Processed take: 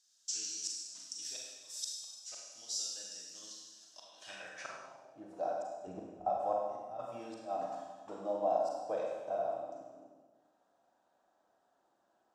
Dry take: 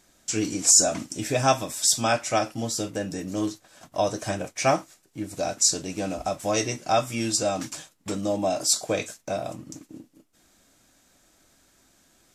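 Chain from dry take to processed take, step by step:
0:05.87–0:06.30: RIAA equalisation playback
0:06.76–0:06.99: gain on a spectral selection 200–8,700 Hz −20 dB
parametric band 2,200 Hz −12 dB 0.27 octaves
gate with flip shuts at −14 dBFS, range −34 dB
four-comb reverb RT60 1.4 s, combs from 33 ms, DRR −2 dB
band-pass filter sweep 5,300 Hz → 770 Hz, 0:03.93–0:05.07
level −5.5 dB

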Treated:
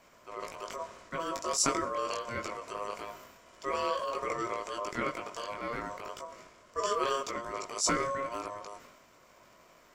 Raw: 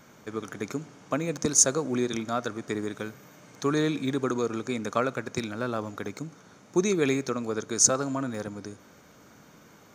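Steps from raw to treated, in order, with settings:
transient designer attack −6 dB, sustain +7 dB
chorus effect 0.24 Hz, delay 18.5 ms, depth 2.1 ms
ring modulation 820 Hz

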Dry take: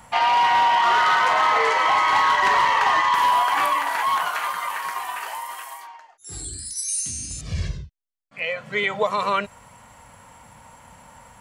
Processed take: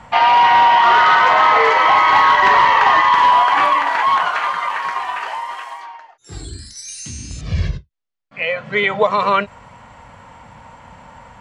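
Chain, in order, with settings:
high-frequency loss of the air 140 metres
every ending faded ahead of time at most 390 dB per second
level +7.5 dB

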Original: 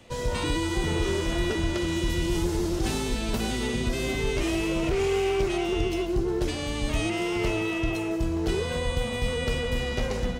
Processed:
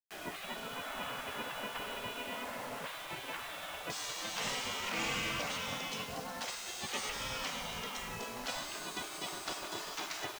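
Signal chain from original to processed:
low-pass filter 2,700 Hz 24 dB per octave, from 0:03.90 8,200 Hz
gate on every frequency bin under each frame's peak −20 dB weak
bit reduction 8 bits

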